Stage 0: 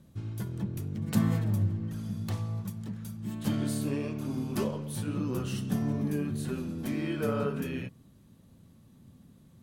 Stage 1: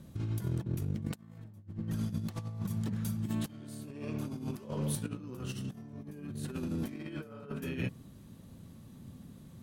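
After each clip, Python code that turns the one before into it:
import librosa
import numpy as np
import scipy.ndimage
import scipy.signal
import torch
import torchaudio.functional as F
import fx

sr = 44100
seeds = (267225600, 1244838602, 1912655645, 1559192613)

y = fx.over_compress(x, sr, threshold_db=-37.0, ratio=-0.5)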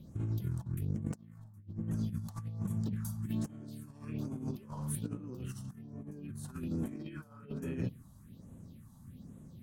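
y = fx.phaser_stages(x, sr, stages=4, low_hz=380.0, high_hz=4500.0, hz=1.2, feedback_pct=35)
y = y * 10.0 ** (-2.0 / 20.0)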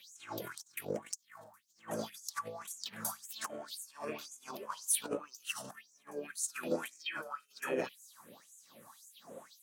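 y = fx.filter_lfo_highpass(x, sr, shape='sine', hz=1.9, low_hz=510.0, high_hz=7000.0, q=5.5)
y = y * 10.0 ** (9.5 / 20.0)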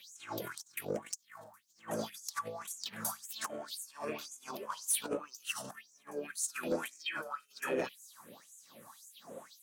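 y = 10.0 ** (-25.5 / 20.0) * np.tanh(x / 10.0 ** (-25.5 / 20.0))
y = y * 10.0 ** (2.0 / 20.0)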